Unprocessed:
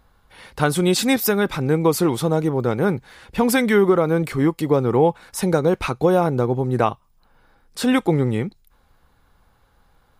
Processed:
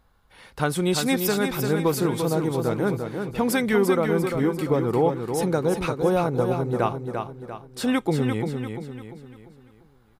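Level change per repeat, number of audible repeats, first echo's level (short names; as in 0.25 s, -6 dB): -7.5 dB, 4, -6.0 dB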